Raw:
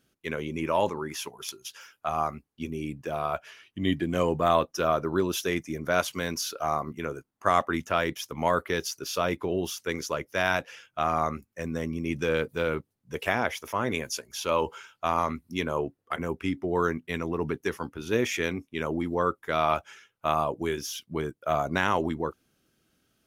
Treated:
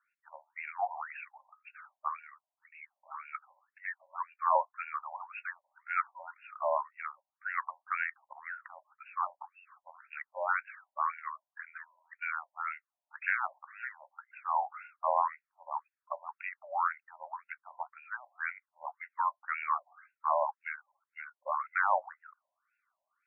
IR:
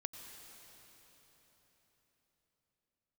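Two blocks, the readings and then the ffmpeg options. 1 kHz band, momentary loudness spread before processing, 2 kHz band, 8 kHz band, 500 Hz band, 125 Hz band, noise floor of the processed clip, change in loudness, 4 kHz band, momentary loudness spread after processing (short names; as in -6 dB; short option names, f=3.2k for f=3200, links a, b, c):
-4.0 dB, 9 LU, -4.5 dB, under -40 dB, -13.5 dB, under -40 dB, under -85 dBFS, -7.0 dB, under -35 dB, 20 LU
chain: -af "highpass=f=530:t=q:w=0.5412,highpass=f=530:t=q:w=1.307,lowpass=f=3.3k:t=q:w=0.5176,lowpass=f=3.3k:t=q:w=0.7071,lowpass=f=3.3k:t=q:w=1.932,afreqshift=-120,afftfilt=real='re*between(b*sr/1024,730*pow(2000/730,0.5+0.5*sin(2*PI*1.9*pts/sr))/1.41,730*pow(2000/730,0.5+0.5*sin(2*PI*1.9*pts/sr))*1.41)':imag='im*between(b*sr/1024,730*pow(2000/730,0.5+0.5*sin(2*PI*1.9*pts/sr))/1.41,730*pow(2000/730,0.5+0.5*sin(2*PI*1.9*pts/sr))*1.41)':win_size=1024:overlap=0.75"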